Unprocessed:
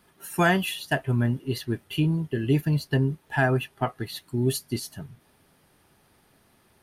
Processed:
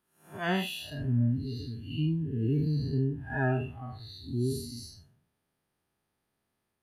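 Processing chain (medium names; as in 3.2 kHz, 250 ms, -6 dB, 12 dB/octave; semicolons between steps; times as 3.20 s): spectral blur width 229 ms; spectral noise reduction 18 dB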